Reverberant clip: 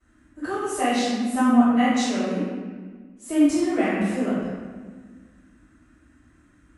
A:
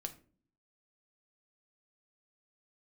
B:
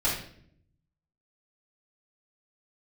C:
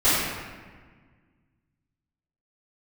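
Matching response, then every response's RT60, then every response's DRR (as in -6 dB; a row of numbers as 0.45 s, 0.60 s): C; 0.45 s, 0.60 s, 1.5 s; 6.5 dB, -8.5 dB, -18.0 dB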